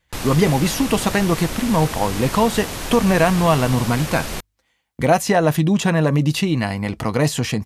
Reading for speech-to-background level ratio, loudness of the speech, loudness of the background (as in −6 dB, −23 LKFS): 9.0 dB, −19.0 LKFS, −28.0 LKFS